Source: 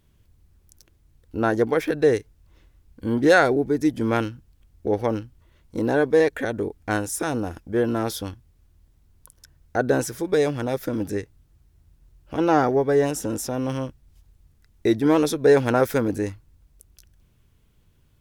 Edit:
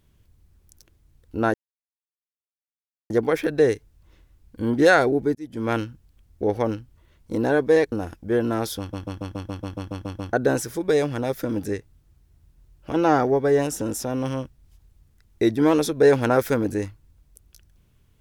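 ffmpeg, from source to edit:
-filter_complex "[0:a]asplit=15[a][b][c][d][e][f][g][h][i][j][k][l][m][n][o];[a]atrim=end=1.54,asetpts=PTS-STARTPTS,afade=t=out:st=1.536:d=0.004:c=hsin,apad=pad_dur=1.56[p];[b]atrim=start=1.54:end=3.79,asetpts=PTS-STARTPTS,afade=t=in:d=0.004:c=hsin,afade=t=out:st=2.246:d=0.004:c=hsin[q];[c]atrim=start=3.79:end=6.362,asetpts=PTS-STARTPTS,afade=t=in:d=0.44[r];[d]atrim=start=7.358:end=8.372[s];[e]atrim=start=8.228:end=8.372[t];[f]atrim=start=8.228:end=8.372[u];[g]atrim=start=8.228:end=8.372[v];[h]atrim=start=8.228:end=8.372[w];[i]atrim=start=8.228:end=8.372[x];[j]atrim=start=8.228:end=8.372[y];[k]atrim=start=8.228:end=8.372[z];[l]atrim=start=8.228:end=8.372[aa];[m]atrim=start=8.228:end=8.372[ab];[n]atrim=start=8.228:end=8.372[ac];[o]atrim=start=9.768[ad];[p][q][r]concat=n=3:v=0:a=1[ae];[ae][s]acrossfade=d=0.004:c1=hsin:c2=hsin[af];[af][t]acrossfade=d=0.004:c1=hsin:c2=hsin[ag];[ag][u]acrossfade=d=0.004:c1=hsin:c2=hsin[ah];[ah][v]acrossfade=d=0.004:c1=hsin:c2=hsin[ai];[ai][w]acrossfade=d=0.004:c1=hsin:c2=hsin[aj];[aj][x]acrossfade=d=0.004:c1=hsin:c2=hsin[ak];[ak][y]acrossfade=d=0.004:c1=hsin:c2=hsin[al];[al][z]acrossfade=d=0.004:c1=hsin:c2=hsin[am];[am][aa]acrossfade=d=0.004:c1=hsin:c2=hsin[an];[an][ab]acrossfade=d=0.004:c1=hsin:c2=hsin[ao];[ao][ac]acrossfade=d=0.004:c1=hsin:c2=hsin[ap];[ap][ad]acrossfade=d=0.004:c1=hsin:c2=hsin"

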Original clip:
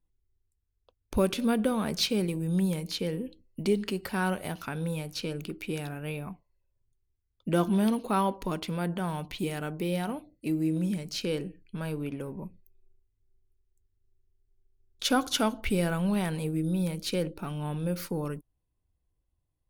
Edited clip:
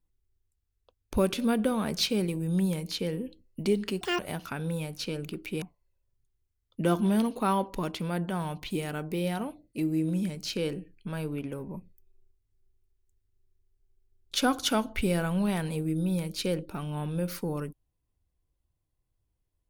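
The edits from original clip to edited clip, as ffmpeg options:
-filter_complex "[0:a]asplit=4[a][b][c][d];[a]atrim=end=4.014[e];[b]atrim=start=4.01:end=4.35,asetpts=PTS-STARTPTS,asetrate=83790,aresample=44100[f];[c]atrim=start=4.346:end=5.782[g];[d]atrim=start=6.298[h];[e][f]acrossfade=d=0.004:c1=hsin:c2=hsin[i];[i][g]acrossfade=d=0.004:c1=hsin:c2=hsin[j];[j][h]acrossfade=d=0.004:c1=hsin:c2=hsin"

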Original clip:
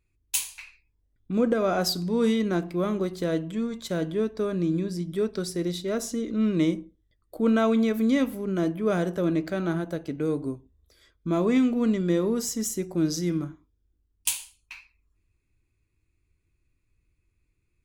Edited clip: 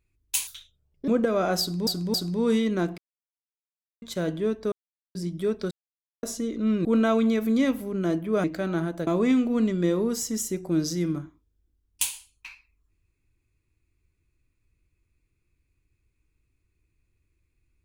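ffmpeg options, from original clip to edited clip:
-filter_complex "[0:a]asplit=14[a][b][c][d][e][f][g][h][i][j][k][l][m][n];[a]atrim=end=0.474[o];[b]atrim=start=0.47:end=1.36,asetpts=PTS-STARTPTS,asetrate=64386,aresample=44100[p];[c]atrim=start=1.356:end=2.152[q];[d]atrim=start=1.878:end=2.152[r];[e]atrim=start=1.878:end=2.72,asetpts=PTS-STARTPTS,afade=t=out:st=0.838:d=0.004:c=hsin[s];[f]atrim=start=2.72:end=3.76,asetpts=PTS-STARTPTS,volume=0[t];[g]atrim=start=3.76:end=4.46,asetpts=PTS-STARTPTS,afade=t=in:d=0.004:c=hsin,afade=t=out:st=0.696:d=0.004:c=hsin[u];[h]atrim=start=4.46:end=4.89,asetpts=PTS-STARTPTS,volume=0[v];[i]atrim=start=4.89:end=5.45,asetpts=PTS-STARTPTS,afade=t=in:d=0.004:c=hsin,afade=t=out:st=0.556:d=0.004:c=hsin[w];[j]atrim=start=5.45:end=5.97,asetpts=PTS-STARTPTS,volume=0[x];[k]atrim=start=5.97:end=6.592,asetpts=PTS-STARTPTS,afade=t=in:d=0.004:c=hsin[y];[l]atrim=start=7.378:end=8.972[z];[m]atrim=start=9.368:end=10.002[aa];[n]atrim=start=11.328[ab];[o][p]acrossfade=d=0.004:c1=hsin:c2=hsin[ac];[ac][q]acrossfade=d=0.004:c1=hsin:c2=hsin[ad];[ad][r]acrossfade=d=0.004:c1=hsin:c2=hsin[ae];[s][t][u][v][w][x][y]concat=n=7:v=0:a=1[af];[ae][af]acrossfade=d=0.004:c1=hsin:c2=hsin[ag];[ag][z]acrossfade=d=0.004:c1=hsin:c2=hsin[ah];[ah][aa]acrossfade=d=0.004:c1=hsin:c2=hsin[ai];[ai][ab]acrossfade=d=0.004:c1=hsin:c2=hsin"

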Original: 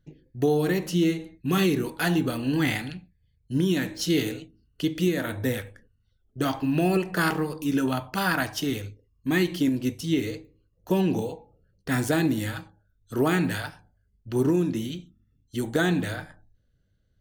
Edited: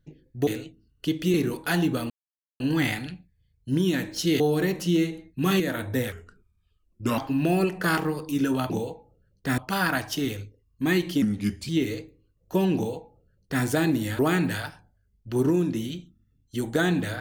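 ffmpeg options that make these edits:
-filter_complex "[0:a]asplit=13[a][b][c][d][e][f][g][h][i][j][k][l][m];[a]atrim=end=0.472[n];[b]atrim=start=4.228:end=5.102[o];[c]atrim=start=1.668:end=2.43,asetpts=PTS-STARTPTS,afade=t=out:st=0.758:d=0.004:c=hsin,apad=pad_dur=0.5[p];[d]atrim=start=2.43:end=4.232,asetpts=PTS-STARTPTS,afade=t=in:d=0.004:c=hsin[q];[e]atrim=start=0.468:end=1.672[r];[f]atrim=start=5.098:end=5.624[s];[g]atrim=start=5.62:end=6.51,asetpts=PTS-STARTPTS,asetrate=37044,aresample=44100[t];[h]atrim=start=6.506:end=8.032[u];[i]atrim=start=11.118:end=12.002[v];[j]atrim=start=8.028:end=9.674[w];[k]atrim=start=9.67:end=10.05,asetpts=PTS-STARTPTS,asetrate=35721,aresample=44100[x];[l]atrim=start=10.046:end=12.552[y];[m]atrim=start=13.188[z];[n][o]acrossfade=d=0.004:c1=hsin:c2=hsin[aa];[p][q]concat=n=2:v=0:a=1[ab];[aa][ab]acrossfade=d=0.004:c1=hsin:c2=hsin[ac];[ac][r]acrossfade=d=0.004:c1=hsin:c2=hsin[ad];[ad][s]acrossfade=d=0.004:c1=hsin:c2=hsin[ae];[ae][t]acrossfade=d=0.004:c1=hsin:c2=hsin[af];[af][u]acrossfade=d=0.004:c1=hsin:c2=hsin[ag];[ag][v]acrossfade=d=0.004:c1=hsin:c2=hsin[ah];[ah][w]acrossfade=d=0.004:c1=hsin:c2=hsin[ai];[ai][x]acrossfade=d=0.004:c1=hsin:c2=hsin[aj];[aj][y]acrossfade=d=0.004:c1=hsin:c2=hsin[ak];[ak][z]acrossfade=d=0.004:c1=hsin:c2=hsin"

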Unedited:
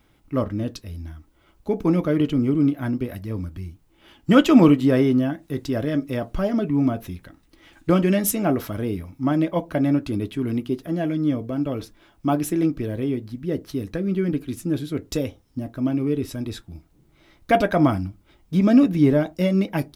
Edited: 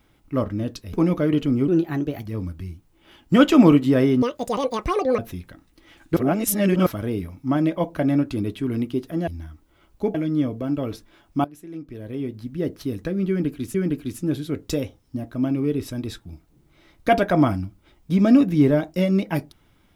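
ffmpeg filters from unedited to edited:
-filter_complex "[0:a]asplit=12[a][b][c][d][e][f][g][h][i][j][k][l];[a]atrim=end=0.932[m];[b]atrim=start=1.798:end=2.554[n];[c]atrim=start=2.55:end=3.22,asetpts=PTS-STARTPTS,asetrate=51597,aresample=44100[o];[d]atrim=start=3.216:end=5.194[p];[e]atrim=start=5.19:end=6.94,asetpts=PTS-STARTPTS,asetrate=80262,aresample=44100[q];[f]atrim=start=6.936:end=7.922[r];[g]atrim=start=7.918:end=8.622,asetpts=PTS-STARTPTS,areverse[s];[h]atrim=start=8.618:end=11.032[t];[i]atrim=start=0.928:end=1.802[u];[j]atrim=start=11.028:end=12.33,asetpts=PTS-STARTPTS,afade=t=out:st=1.298:d=0.004:c=hsin:silence=0.1[v];[k]atrim=start=12.33:end=14.632,asetpts=PTS-STARTPTS,afade=t=in:d=1.01:c=qua:silence=0.1[w];[l]atrim=start=14.168[x];[m][n]acrossfade=d=0.004:c1=hsin:c2=hsin[y];[y][o]acrossfade=d=0.004:c1=hsin:c2=hsin[z];[z][p]acrossfade=d=0.004:c1=hsin:c2=hsin[aa];[aa][q]acrossfade=d=0.004:c1=hsin:c2=hsin[ab];[ab][r]acrossfade=d=0.004:c1=hsin:c2=hsin[ac];[ac][s]acrossfade=d=0.004:c1=hsin:c2=hsin[ad];[ad][t]acrossfade=d=0.004:c1=hsin:c2=hsin[ae];[ae][u]acrossfade=d=0.004:c1=hsin:c2=hsin[af];[v][w]concat=n=2:v=0:a=1[ag];[af][ag]acrossfade=d=0.004:c1=hsin:c2=hsin[ah];[ah][x]acrossfade=d=0.004:c1=hsin:c2=hsin"

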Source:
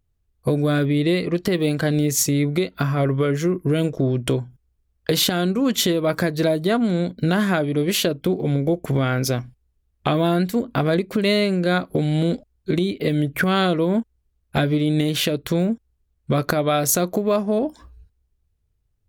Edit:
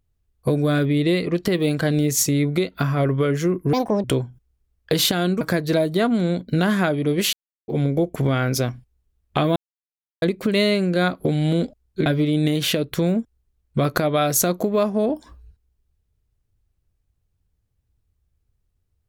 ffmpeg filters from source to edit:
-filter_complex "[0:a]asplit=9[a][b][c][d][e][f][g][h][i];[a]atrim=end=3.734[j];[b]atrim=start=3.73:end=4.22,asetpts=PTS-STARTPTS,asetrate=69678,aresample=44100[k];[c]atrim=start=4.216:end=5.592[l];[d]atrim=start=6.108:end=8.03,asetpts=PTS-STARTPTS,afade=t=out:st=1.918:d=0.004:c=hsin[m];[e]atrim=start=8.03:end=8.38,asetpts=PTS-STARTPTS,volume=0[n];[f]atrim=start=8.38:end=10.26,asetpts=PTS-STARTPTS,afade=t=in:d=0.004:c=hsin,afade=t=out:st=1.876:d=0.004:c=hsin[o];[g]atrim=start=10.26:end=10.92,asetpts=PTS-STARTPTS,volume=0[p];[h]atrim=start=10.92:end=12.762,asetpts=PTS-STARTPTS,afade=t=in:d=0.004:c=hsin[q];[i]atrim=start=14.588[r];[j][k]acrossfade=d=0.004:c1=hsin:c2=hsin[s];[s][l]acrossfade=d=0.004:c1=hsin:c2=hsin[t];[m][n][o][p][q]concat=n=5:v=0:a=1[u];[t][u]acrossfade=d=0.004:c1=hsin:c2=hsin[v];[v][r]acrossfade=d=0.004:c1=hsin:c2=hsin"

